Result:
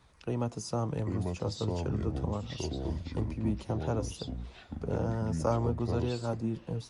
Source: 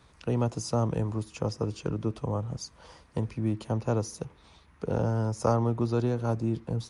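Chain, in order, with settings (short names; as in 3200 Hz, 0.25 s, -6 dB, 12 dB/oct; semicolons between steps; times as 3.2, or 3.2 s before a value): flange 0.34 Hz, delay 0.9 ms, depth 9.4 ms, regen +64%; echoes that change speed 0.705 s, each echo -5 st, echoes 2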